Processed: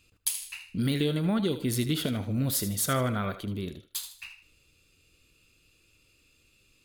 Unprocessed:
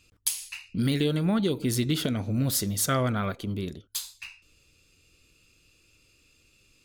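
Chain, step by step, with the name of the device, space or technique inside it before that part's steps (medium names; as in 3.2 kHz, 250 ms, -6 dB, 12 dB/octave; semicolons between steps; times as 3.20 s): exciter from parts (in parallel at -7.5 dB: high-pass 3.7 kHz 24 dB/octave + saturation -20.5 dBFS, distortion -14 dB + high-pass 4.7 kHz 12 dB/octave); on the sum: thinning echo 77 ms, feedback 33%, high-pass 550 Hz, level -11 dB; trim -2 dB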